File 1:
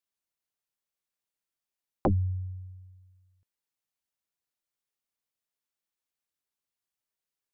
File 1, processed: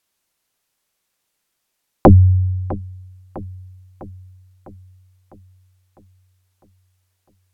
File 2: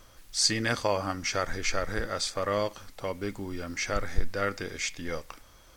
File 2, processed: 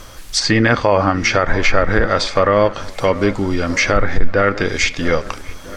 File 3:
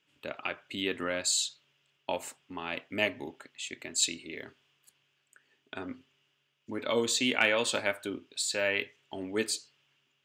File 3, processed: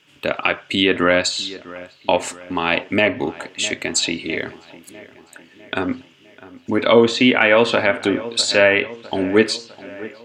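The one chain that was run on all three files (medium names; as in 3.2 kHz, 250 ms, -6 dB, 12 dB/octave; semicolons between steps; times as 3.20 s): low-pass that closes with the level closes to 2.3 kHz, closed at -25.5 dBFS; on a send: feedback echo behind a low-pass 653 ms, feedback 56%, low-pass 2.2 kHz, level -18.5 dB; on the sum: loudness maximiser +18.5 dB; trim -1 dB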